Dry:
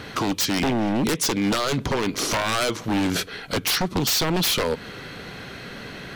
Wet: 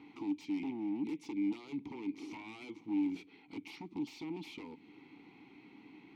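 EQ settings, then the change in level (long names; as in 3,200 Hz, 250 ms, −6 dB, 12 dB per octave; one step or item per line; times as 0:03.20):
dynamic equaliser 1,100 Hz, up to −8 dB, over −40 dBFS, Q 0.77
formant filter u
−6.0 dB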